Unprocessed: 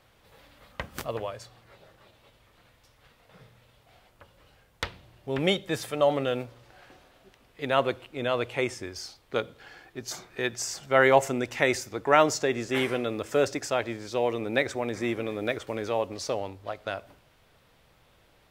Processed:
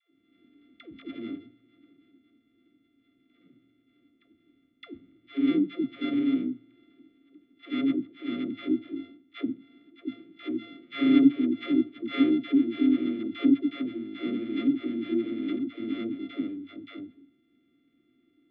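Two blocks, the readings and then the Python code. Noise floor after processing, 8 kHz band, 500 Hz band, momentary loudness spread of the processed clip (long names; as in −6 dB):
−69 dBFS, below −40 dB, −11.5 dB, 19 LU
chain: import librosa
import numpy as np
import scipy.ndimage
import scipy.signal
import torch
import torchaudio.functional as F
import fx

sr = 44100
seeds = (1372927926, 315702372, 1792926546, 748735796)

y = np.r_[np.sort(x[:len(x) // 64 * 64].reshape(-1, 64), axis=1).ravel(), x[len(x) // 64 * 64:]]
y = fx.vowel_filter(y, sr, vowel='i')
y = fx.air_absorb(y, sr, metres=400.0)
y = fx.small_body(y, sr, hz=(330.0, 1200.0, 3500.0), ring_ms=30, db=16)
y = fx.dispersion(y, sr, late='lows', ms=128.0, hz=440.0)
y = y * 10.0 ** (4.5 / 20.0)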